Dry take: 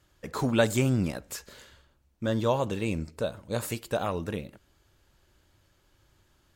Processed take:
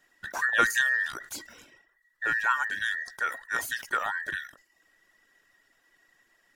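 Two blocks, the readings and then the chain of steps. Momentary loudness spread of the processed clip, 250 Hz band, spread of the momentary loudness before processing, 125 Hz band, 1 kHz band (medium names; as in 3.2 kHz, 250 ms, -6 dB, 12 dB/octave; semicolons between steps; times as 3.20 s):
15 LU, -18.0 dB, 14 LU, under -25 dB, +5.0 dB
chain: every band turned upside down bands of 2 kHz; reverb removal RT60 0.52 s; decay stretcher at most 140 dB/s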